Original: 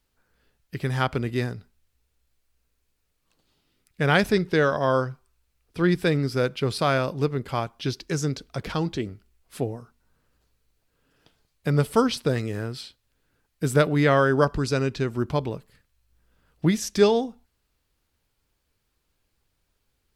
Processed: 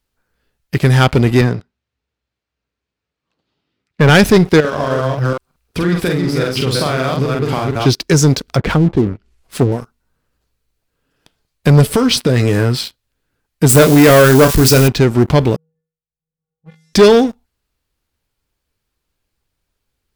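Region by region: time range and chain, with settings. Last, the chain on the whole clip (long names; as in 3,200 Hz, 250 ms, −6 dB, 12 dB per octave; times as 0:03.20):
0:01.41–0:04.09: high-pass filter 96 Hz + high-frequency loss of the air 140 metres
0:04.60–0:07.86: delay that plays each chunk backwards 183 ms, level −3 dB + downward compressor 8 to 1, threshold −31 dBFS + double-tracking delay 46 ms −3.5 dB
0:08.48–0:09.72: treble cut that deepens with the level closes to 330 Hz, closed at −22 dBFS + upward compression, threshold −46 dBFS
0:11.88–0:12.76: double-tracking delay 16 ms −10 dB + downward compressor, threshold −24 dBFS
0:13.69–0:14.88: spike at every zero crossing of −22.5 dBFS + double-tracking delay 31 ms −9 dB
0:15.56–0:16.93: low-pass that shuts in the quiet parts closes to 610 Hz, open at −17.5 dBFS + tuned comb filter 160 Hz, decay 0.54 s, harmonics odd, mix 100% + downward compressor 2 to 1, threshold −60 dBFS
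whole clip: dynamic equaliser 1,100 Hz, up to −4 dB, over −35 dBFS, Q 0.86; leveller curve on the samples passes 3; level +6 dB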